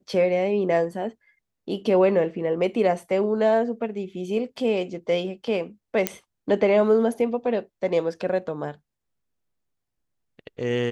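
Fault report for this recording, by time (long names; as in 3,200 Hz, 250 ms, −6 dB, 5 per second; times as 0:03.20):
0:06.07: click −5 dBFS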